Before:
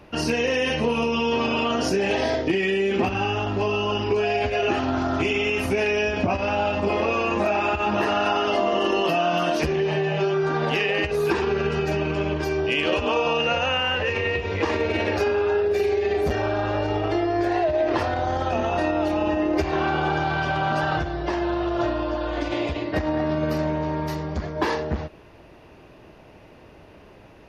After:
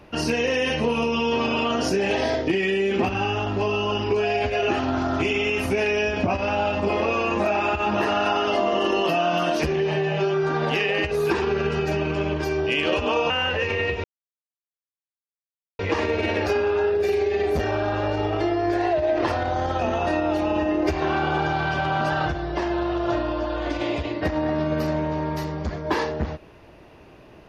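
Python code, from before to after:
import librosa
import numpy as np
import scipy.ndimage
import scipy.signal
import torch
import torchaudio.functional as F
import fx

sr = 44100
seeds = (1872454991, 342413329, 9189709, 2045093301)

y = fx.edit(x, sr, fx.cut(start_s=13.3, length_s=0.46),
    fx.insert_silence(at_s=14.5, length_s=1.75), tone=tone)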